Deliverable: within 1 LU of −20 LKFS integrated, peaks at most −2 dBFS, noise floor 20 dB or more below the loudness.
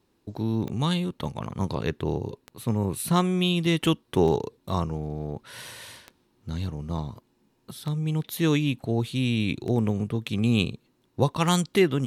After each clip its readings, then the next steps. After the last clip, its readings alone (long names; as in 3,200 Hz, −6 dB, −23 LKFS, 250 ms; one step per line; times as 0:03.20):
number of clicks 7; integrated loudness −26.5 LKFS; sample peak −7.0 dBFS; target loudness −20.0 LKFS
→ click removal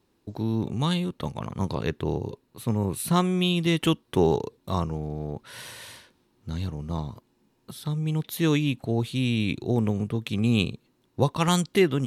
number of clicks 0; integrated loudness −26.5 LKFS; sample peak −7.0 dBFS; target loudness −20.0 LKFS
→ level +6.5 dB
brickwall limiter −2 dBFS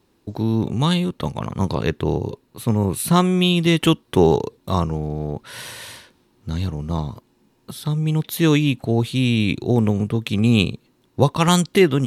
integrated loudness −20.0 LKFS; sample peak −2.0 dBFS; background noise floor −62 dBFS